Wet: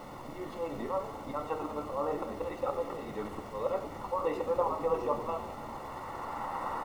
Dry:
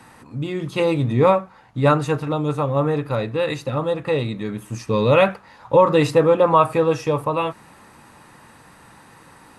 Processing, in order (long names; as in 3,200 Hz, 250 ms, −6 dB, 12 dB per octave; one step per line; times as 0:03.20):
camcorder AGC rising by 9 dB per second
high-pass filter 810 Hz 12 dB per octave
volume swells 360 ms
downward compressor 1.5 to 1, threshold −35 dBFS, peak gain reduction 6 dB
bit-depth reduction 6 bits, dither triangular
tempo change 1.4×
Savitzky-Golay smoothing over 65 samples
echo with shifted repeats 103 ms, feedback 63%, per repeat −120 Hz, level −12.5 dB
on a send at −6 dB: convolution reverb, pre-delay 4 ms
on the sum: level +2 dB